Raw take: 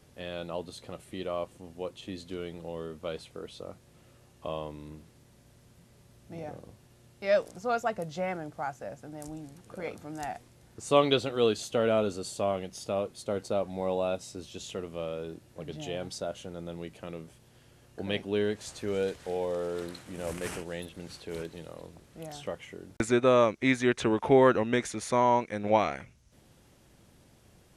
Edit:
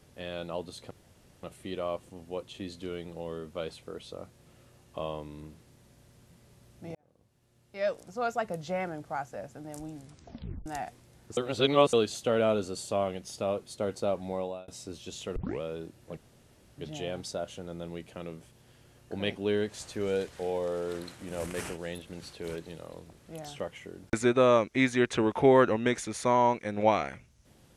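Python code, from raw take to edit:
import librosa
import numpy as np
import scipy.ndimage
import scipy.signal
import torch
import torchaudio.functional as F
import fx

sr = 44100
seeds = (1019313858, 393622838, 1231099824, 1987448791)

y = fx.edit(x, sr, fx.insert_room_tone(at_s=0.91, length_s=0.52),
    fx.fade_in_span(start_s=6.43, length_s=1.63),
    fx.tape_stop(start_s=9.49, length_s=0.65),
    fx.reverse_span(start_s=10.85, length_s=0.56),
    fx.fade_out_span(start_s=13.76, length_s=0.4),
    fx.tape_start(start_s=14.84, length_s=0.25),
    fx.insert_room_tone(at_s=15.65, length_s=0.61), tone=tone)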